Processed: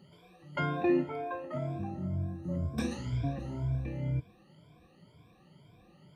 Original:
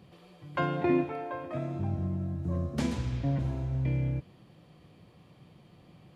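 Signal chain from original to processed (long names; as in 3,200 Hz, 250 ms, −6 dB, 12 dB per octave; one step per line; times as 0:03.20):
rippled gain that drifts along the octave scale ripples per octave 1.7, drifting +2 Hz, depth 21 dB
level −6.5 dB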